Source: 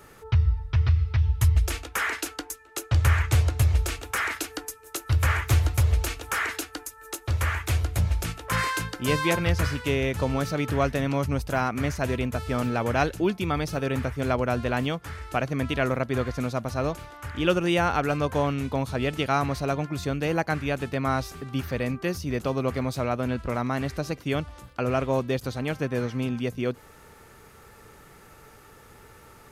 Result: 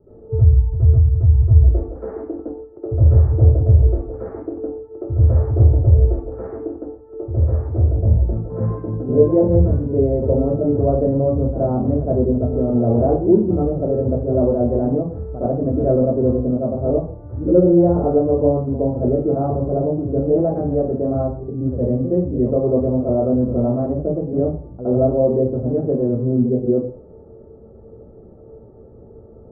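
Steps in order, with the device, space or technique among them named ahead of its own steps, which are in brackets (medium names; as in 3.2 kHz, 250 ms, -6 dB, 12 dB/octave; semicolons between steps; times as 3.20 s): next room (low-pass 540 Hz 24 dB/octave; reverberation RT60 0.45 s, pre-delay 63 ms, DRR -12.5 dB); 22.19–23.94 s: peaking EQ 3.2 kHz +4.5 dB 2.3 oct; trim -1 dB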